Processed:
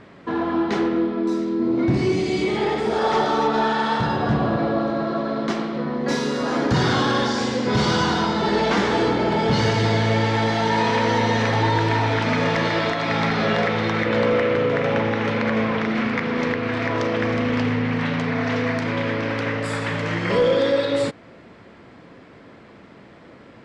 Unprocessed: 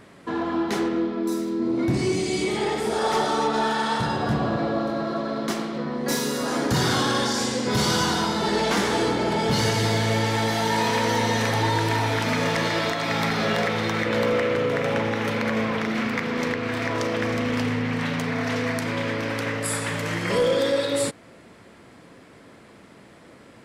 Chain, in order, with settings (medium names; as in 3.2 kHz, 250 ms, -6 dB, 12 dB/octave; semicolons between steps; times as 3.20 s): distance through air 140 m; trim +3.5 dB